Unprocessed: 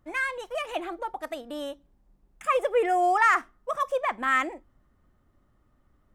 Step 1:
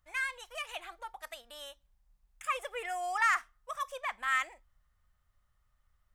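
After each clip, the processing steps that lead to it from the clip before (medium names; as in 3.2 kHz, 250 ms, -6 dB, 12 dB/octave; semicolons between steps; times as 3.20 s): amplifier tone stack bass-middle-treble 10-0-10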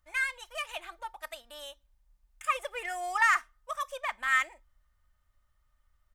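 comb 3.3 ms, depth 40%; in parallel at -8 dB: crossover distortion -43.5 dBFS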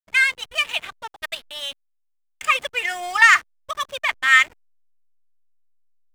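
frequency weighting D; hysteresis with a dead band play -36.5 dBFS; trim +6 dB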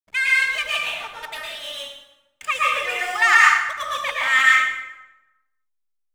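plate-style reverb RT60 1 s, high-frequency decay 0.7×, pre-delay 100 ms, DRR -5.5 dB; trim -5.5 dB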